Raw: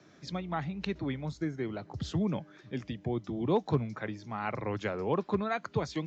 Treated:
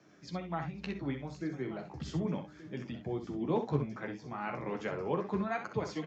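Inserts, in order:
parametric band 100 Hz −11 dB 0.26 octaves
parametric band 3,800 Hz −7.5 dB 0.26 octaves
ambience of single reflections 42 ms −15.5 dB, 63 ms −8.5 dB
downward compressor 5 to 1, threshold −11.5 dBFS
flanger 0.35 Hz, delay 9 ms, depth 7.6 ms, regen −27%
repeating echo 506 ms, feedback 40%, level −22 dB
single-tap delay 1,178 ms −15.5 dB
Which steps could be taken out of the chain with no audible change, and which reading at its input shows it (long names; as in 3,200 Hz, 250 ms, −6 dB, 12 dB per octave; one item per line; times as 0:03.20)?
downward compressor, threshold −11.5 dBFS: peak of its input −14.5 dBFS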